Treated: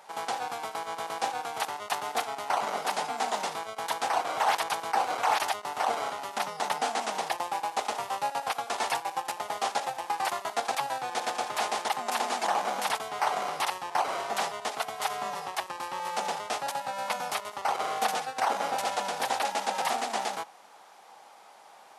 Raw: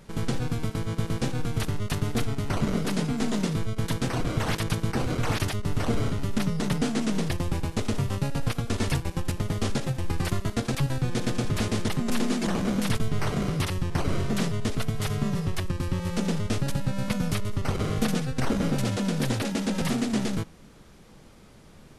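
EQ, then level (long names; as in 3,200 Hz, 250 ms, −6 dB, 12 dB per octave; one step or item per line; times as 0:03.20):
high-pass with resonance 800 Hz, resonance Q 4.9
0.0 dB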